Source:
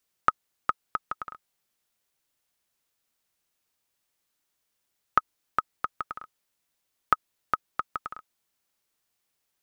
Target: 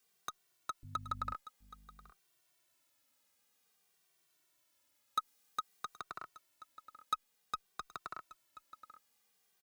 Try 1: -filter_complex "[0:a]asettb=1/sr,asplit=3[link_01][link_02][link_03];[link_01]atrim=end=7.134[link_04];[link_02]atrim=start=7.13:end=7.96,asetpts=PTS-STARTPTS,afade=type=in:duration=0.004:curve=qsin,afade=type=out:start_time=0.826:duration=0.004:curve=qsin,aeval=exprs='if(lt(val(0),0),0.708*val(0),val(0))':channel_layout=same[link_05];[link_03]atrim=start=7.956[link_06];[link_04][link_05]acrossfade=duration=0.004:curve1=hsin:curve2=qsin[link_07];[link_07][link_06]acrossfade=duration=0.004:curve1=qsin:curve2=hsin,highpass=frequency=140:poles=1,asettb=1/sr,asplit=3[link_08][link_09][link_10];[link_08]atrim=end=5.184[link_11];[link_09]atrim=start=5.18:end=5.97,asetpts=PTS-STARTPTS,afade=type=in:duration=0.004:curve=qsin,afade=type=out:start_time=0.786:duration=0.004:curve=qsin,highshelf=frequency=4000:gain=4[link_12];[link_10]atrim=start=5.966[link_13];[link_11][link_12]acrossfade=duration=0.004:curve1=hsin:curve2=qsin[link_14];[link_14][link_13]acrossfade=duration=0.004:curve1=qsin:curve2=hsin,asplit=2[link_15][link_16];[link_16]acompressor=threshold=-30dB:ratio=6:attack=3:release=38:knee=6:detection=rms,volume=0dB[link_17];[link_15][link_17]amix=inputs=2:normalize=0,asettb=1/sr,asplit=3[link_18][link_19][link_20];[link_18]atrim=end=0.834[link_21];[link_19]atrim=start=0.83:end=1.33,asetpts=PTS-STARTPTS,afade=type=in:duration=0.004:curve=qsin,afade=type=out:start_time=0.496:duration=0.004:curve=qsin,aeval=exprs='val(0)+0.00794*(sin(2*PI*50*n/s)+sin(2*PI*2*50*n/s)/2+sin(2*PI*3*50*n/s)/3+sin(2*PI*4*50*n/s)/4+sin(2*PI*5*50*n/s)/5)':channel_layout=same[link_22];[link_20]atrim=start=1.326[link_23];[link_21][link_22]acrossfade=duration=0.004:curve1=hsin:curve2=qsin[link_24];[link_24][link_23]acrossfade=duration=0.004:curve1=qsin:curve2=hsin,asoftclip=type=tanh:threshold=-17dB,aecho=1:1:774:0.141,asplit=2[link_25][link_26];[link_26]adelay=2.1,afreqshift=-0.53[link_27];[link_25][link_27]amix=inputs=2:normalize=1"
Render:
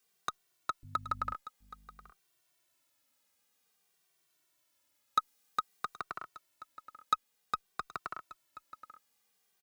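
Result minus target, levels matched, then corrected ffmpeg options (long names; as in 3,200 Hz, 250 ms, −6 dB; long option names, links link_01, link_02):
downward compressor: peak gain reduction −8.5 dB; soft clipping: distortion −4 dB
-filter_complex "[0:a]asettb=1/sr,asplit=3[link_01][link_02][link_03];[link_01]atrim=end=7.134[link_04];[link_02]atrim=start=7.13:end=7.96,asetpts=PTS-STARTPTS,afade=type=in:duration=0.004:curve=qsin,afade=type=out:start_time=0.826:duration=0.004:curve=qsin,aeval=exprs='if(lt(val(0),0),0.708*val(0),val(0))':channel_layout=same[link_05];[link_03]atrim=start=7.956[link_06];[link_04][link_05]acrossfade=duration=0.004:curve1=hsin:curve2=qsin[link_07];[link_07][link_06]acrossfade=duration=0.004:curve1=qsin:curve2=hsin,highpass=frequency=140:poles=1,asettb=1/sr,asplit=3[link_08][link_09][link_10];[link_08]atrim=end=5.184[link_11];[link_09]atrim=start=5.18:end=5.97,asetpts=PTS-STARTPTS,afade=type=in:duration=0.004:curve=qsin,afade=type=out:start_time=0.786:duration=0.004:curve=qsin,highshelf=frequency=4000:gain=4[link_12];[link_10]atrim=start=5.966[link_13];[link_11][link_12]acrossfade=duration=0.004:curve1=hsin:curve2=qsin[link_14];[link_14][link_13]acrossfade=duration=0.004:curve1=qsin:curve2=hsin,asplit=2[link_15][link_16];[link_16]acompressor=threshold=-40.5dB:ratio=6:attack=3:release=38:knee=6:detection=rms,volume=0dB[link_17];[link_15][link_17]amix=inputs=2:normalize=0,asettb=1/sr,asplit=3[link_18][link_19][link_20];[link_18]atrim=end=0.834[link_21];[link_19]atrim=start=0.83:end=1.33,asetpts=PTS-STARTPTS,afade=type=in:duration=0.004:curve=qsin,afade=type=out:start_time=0.496:duration=0.004:curve=qsin,aeval=exprs='val(0)+0.00794*(sin(2*PI*50*n/s)+sin(2*PI*2*50*n/s)/2+sin(2*PI*3*50*n/s)/3+sin(2*PI*4*50*n/s)/4+sin(2*PI*5*50*n/s)/5)':channel_layout=same[link_22];[link_20]atrim=start=1.326[link_23];[link_21][link_22]acrossfade=duration=0.004:curve1=hsin:curve2=qsin[link_24];[link_24][link_23]acrossfade=duration=0.004:curve1=qsin:curve2=hsin,asoftclip=type=tanh:threshold=-25dB,aecho=1:1:774:0.141,asplit=2[link_25][link_26];[link_26]adelay=2.1,afreqshift=-0.53[link_27];[link_25][link_27]amix=inputs=2:normalize=1"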